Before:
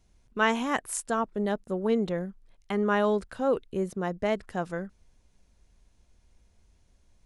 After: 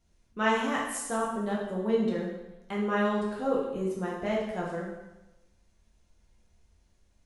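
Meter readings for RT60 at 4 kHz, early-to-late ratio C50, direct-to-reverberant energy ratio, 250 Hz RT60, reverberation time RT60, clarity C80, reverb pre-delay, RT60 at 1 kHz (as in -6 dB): 0.95 s, 2.5 dB, -4.5 dB, 0.95 s, 1.0 s, 5.5 dB, 4 ms, 1.0 s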